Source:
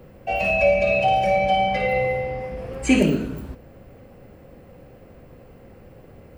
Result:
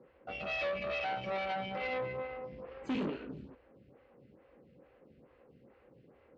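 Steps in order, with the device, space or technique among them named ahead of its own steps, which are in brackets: vibe pedal into a guitar amplifier (lamp-driven phase shifter 2.3 Hz; valve stage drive 24 dB, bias 0.7; cabinet simulation 80–4200 Hz, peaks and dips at 98 Hz -10 dB, 180 Hz -3 dB, 680 Hz -6 dB); trim -6 dB

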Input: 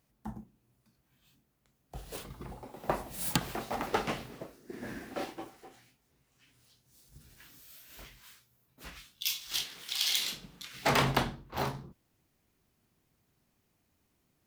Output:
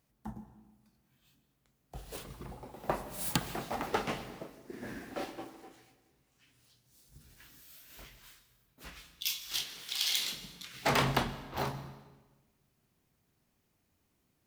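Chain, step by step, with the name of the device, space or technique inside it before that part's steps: saturated reverb return (on a send at -12.5 dB: reverberation RT60 1.2 s, pre-delay 114 ms + saturation -27 dBFS, distortion -12 dB); on the sum: trim -1.5 dB

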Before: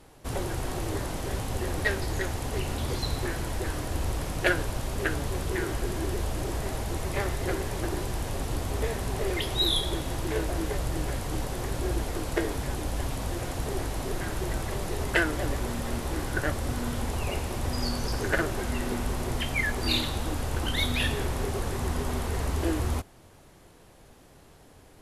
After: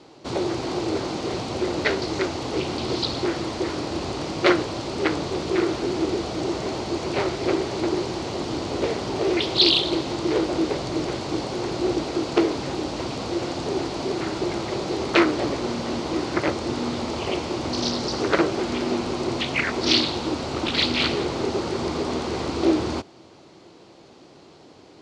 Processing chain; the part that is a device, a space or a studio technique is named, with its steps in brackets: full-range speaker at full volume (loudspeaker Doppler distortion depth 0.9 ms; cabinet simulation 160–6400 Hz, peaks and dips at 340 Hz +7 dB, 1.7 kHz -7 dB, 4.4 kHz +6 dB); trim +6 dB

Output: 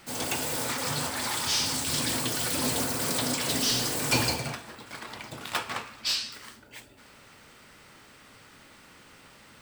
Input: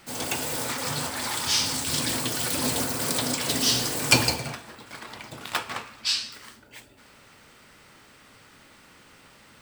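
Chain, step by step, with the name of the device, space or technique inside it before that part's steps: saturation between pre-emphasis and de-emphasis (treble shelf 2.5 kHz +11 dB; saturation -12.5 dBFS, distortion -11 dB; treble shelf 2.5 kHz -11 dB)

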